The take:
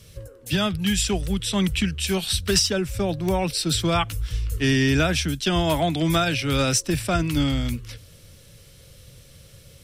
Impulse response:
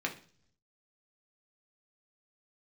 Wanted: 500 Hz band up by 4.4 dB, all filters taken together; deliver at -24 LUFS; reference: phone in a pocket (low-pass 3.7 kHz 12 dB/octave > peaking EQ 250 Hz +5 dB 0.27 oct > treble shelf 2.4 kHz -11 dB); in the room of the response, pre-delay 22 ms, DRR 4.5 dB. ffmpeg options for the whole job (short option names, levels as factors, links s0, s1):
-filter_complex "[0:a]equalizer=f=500:t=o:g=6.5,asplit=2[s0][s1];[1:a]atrim=start_sample=2205,adelay=22[s2];[s1][s2]afir=irnorm=-1:irlink=0,volume=0.335[s3];[s0][s3]amix=inputs=2:normalize=0,lowpass=3700,equalizer=f=250:t=o:w=0.27:g=5,highshelf=f=2400:g=-11,volume=0.708"